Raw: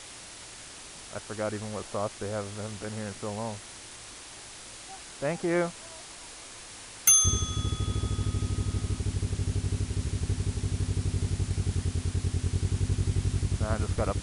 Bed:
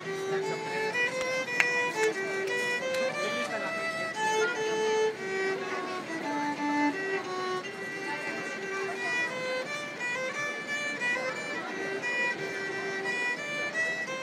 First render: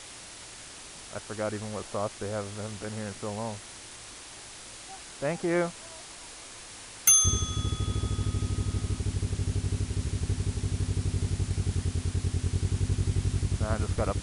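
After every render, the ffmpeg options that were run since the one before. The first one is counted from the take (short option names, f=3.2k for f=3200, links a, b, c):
-af anull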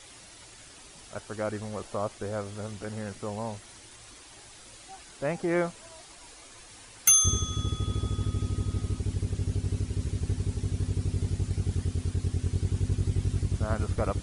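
-af "afftdn=nr=8:nf=-46"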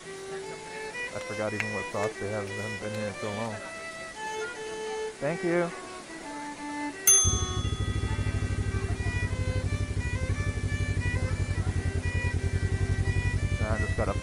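-filter_complex "[1:a]volume=-7dB[a];[0:a][a]amix=inputs=2:normalize=0"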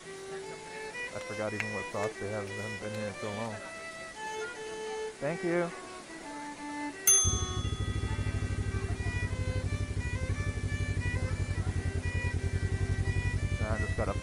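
-af "volume=-3.5dB"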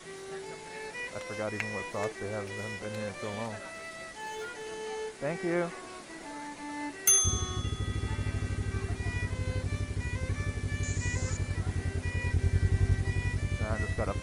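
-filter_complex "[0:a]asettb=1/sr,asplit=3[a][b][c];[a]atrim=end=3.674[d];[b]atrim=start=3.67:end=4.68,asetpts=PTS-STARTPTS,afade=t=in:d=0.004:c=qsin,afade=t=out:st=1.006:d=0.004:c=qsin,asoftclip=type=hard:threshold=-34.5dB[e];[c]atrim=start=4.676[f];[d][e]acrossfade=d=0.004:c1=hsin:c2=qsin[g];[g][f]acrossfade=d=0.004:c1=qsin:c2=hsin,asettb=1/sr,asplit=3[h][i][j];[h]atrim=end=10.834[k];[i]atrim=start=10.83:end=11.37,asetpts=PTS-STARTPTS,afade=t=in:d=0.004:c=qsin,afade=t=out:st=0.536:d=0.004:c=qsin,lowpass=f=7k:t=q:w=7.3[l];[j]atrim=start=11.366[m];[k][l]acrossfade=d=0.004:c1=hsin:c2=qsin[n];[n][m]acrossfade=d=0.004:c1=qsin:c2=hsin,asettb=1/sr,asplit=3[o][p][q];[o]atrim=end=12.284[r];[p]atrim=start=12.28:end=12.97,asetpts=PTS-STARTPTS,afade=t=in:d=0.004:c=qsin,afade=t=out:st=0.686:d=0.004:c=qsin,lowshelf=f=130:g=7.5[s];[q]atrim=start=12.966[t];[r][s]acrossfade=d=0.004:c1=hsin:c2=qsin[u];[u][t]acrossfade=d=0.004:c1=qsin:c2=hsin"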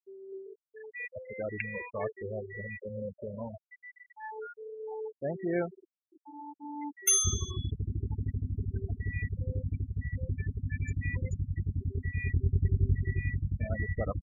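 -af "highshelf=f=8.6k:g=-4.5,afftfilt=real='re*gte(hypot(re,im),0.0562)':imag='im*gte(hypot(re,im),0.0562)':win_size=1024:overlap=0.75"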